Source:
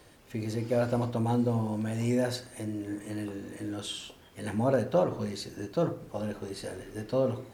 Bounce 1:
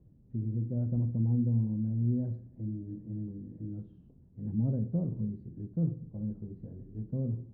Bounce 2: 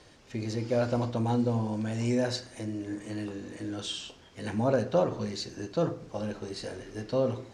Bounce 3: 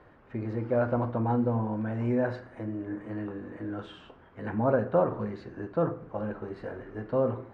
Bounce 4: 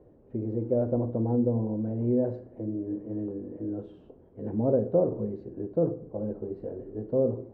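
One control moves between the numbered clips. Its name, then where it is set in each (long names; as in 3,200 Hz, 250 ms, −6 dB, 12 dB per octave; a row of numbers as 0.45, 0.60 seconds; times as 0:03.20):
low-pass with resonance, frequency: 170, 6,000, 1,400, 460 Hertz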